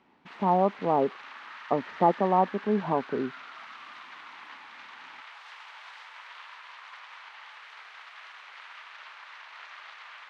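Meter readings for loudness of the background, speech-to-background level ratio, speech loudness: -44.5 LUFS, 17.5 dB, -27.0 LUFS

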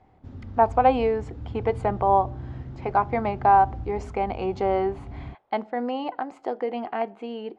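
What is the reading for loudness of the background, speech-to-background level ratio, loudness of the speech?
-38.0 LUFS, 13.0 dB, -25.0 LUFS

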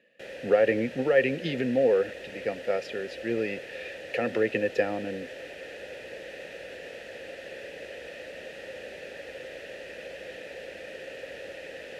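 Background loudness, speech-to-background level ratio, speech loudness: -41.0 LUFS, 13.5 dB, -27.5 LUFS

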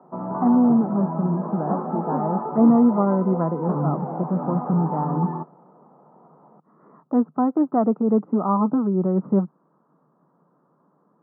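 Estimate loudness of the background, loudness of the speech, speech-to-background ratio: -29.0 LUFS, -22.0 LUFS, 7.0 dB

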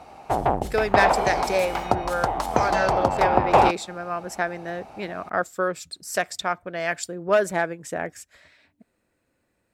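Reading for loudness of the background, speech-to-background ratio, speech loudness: -23.0 LUFS, -4.0 dB, -27.0 LUFS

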